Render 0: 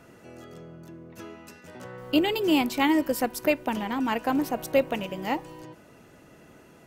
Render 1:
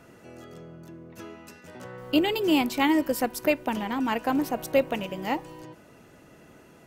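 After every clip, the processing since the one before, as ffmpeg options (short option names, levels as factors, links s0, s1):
-af anull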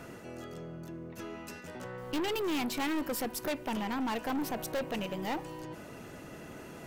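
-af "areverse,acompressor=mode=upward:threshold=0.0141:ratio=2.5,areverse,aeval=exprs='(tanh(31.6*val(0)+0.25)-tanh(0.25))/31.6':c=same"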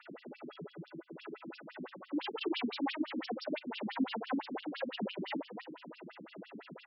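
-af "aecho=1:1:55.39|277:0.891|0.501,afftfilt=real='re*between(b*sr/1024,210*pow(4000/210,0.5+0.5*sin(2*PI*5.9*pts/sr))/1.41,210*pow(4000/210,0.5+0.5*sin(2*PI*5.9*pts/sr))*1.41)':imag='im*between(b*sr/1024,210*pow(4000/210,0.5+0.5*sin(2*PI*5.9*pts/sr))/1.41,210*pow(4000/210,0.5+0.5*sin(2*PI*5.9*pts/sr))*1.41)':win_size=1024:overlap=0.75,volume=1.19"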